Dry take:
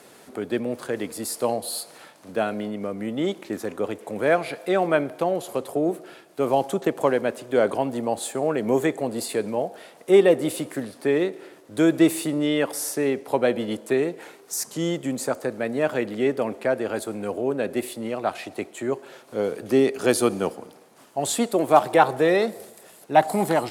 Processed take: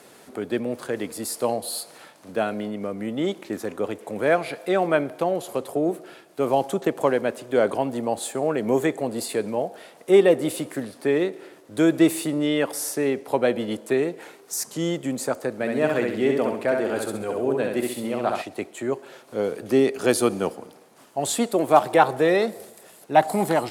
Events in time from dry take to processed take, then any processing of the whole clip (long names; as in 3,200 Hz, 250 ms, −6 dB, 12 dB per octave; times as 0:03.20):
0:15.54–0:18.42: repeating echo 66 ms, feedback 41%, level −3.5 dB